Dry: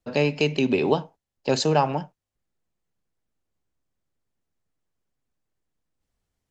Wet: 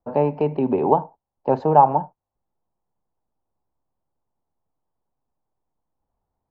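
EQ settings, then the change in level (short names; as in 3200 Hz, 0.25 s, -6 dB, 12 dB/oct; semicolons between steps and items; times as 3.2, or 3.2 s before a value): synth low-pass 890 Hz, resonance Q 3.6; 0.0 dB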